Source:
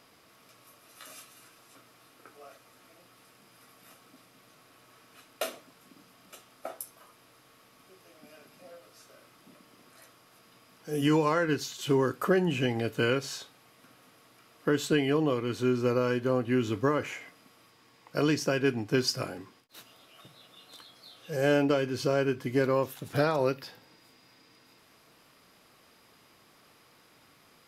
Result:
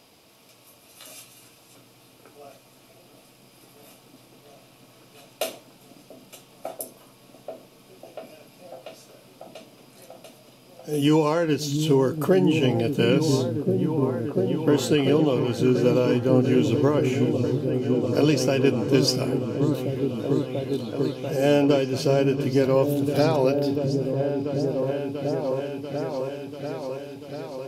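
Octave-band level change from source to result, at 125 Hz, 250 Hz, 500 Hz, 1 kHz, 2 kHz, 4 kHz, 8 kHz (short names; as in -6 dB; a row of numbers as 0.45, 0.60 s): +10.0, +8.5, +7.5, +3.5, 0.0, +6.0, +5.5 dB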